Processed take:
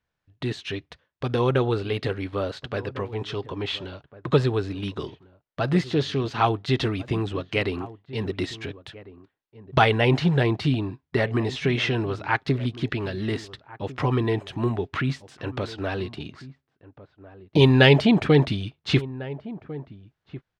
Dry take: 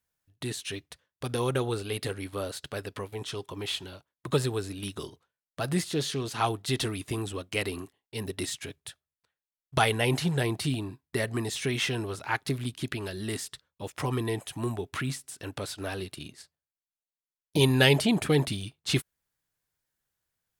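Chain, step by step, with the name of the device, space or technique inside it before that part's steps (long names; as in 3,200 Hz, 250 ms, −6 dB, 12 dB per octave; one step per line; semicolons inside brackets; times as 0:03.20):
shout across a valley (high-frequency loss of the air 210 metres; slap from a distant wall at 240 metres, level −17 dB)
level +7 dB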